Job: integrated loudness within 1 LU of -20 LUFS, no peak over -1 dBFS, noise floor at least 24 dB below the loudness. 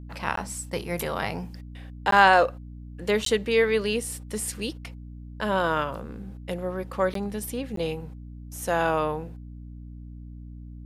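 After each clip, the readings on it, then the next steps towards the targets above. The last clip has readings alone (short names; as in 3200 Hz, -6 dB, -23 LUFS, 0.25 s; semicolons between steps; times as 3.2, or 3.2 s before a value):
dropouts 5; longest dropout 13 ms; hum 60 Hz; harmonics up to 300 Hz; hum level -38 dBFS; loudness -26.0 LUFS; peak -3.0 dBFS; loudness target -20.0 LUFS
-> interpolate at 0.36/2.11/3.25/7.14/7.76, 13 ms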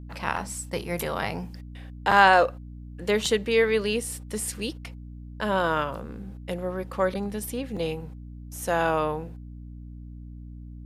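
dropouts 0; hum 60 Hz; harmonics up to 300 Hz; hum level -38 dBFS
-> de-hum 60 Hz, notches 5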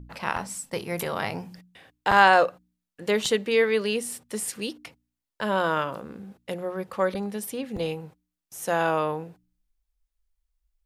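hum none; loudness -26.0 LUFS; peak -3.0 dBFS; loudness target -20.0 LUFS
-> gain +6 dB; limiter -1 dBFS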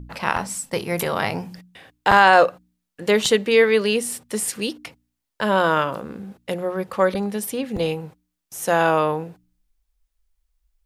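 loudness -20.5 LUFS; peak -1.0 dBFS; noise floor -79 dBFS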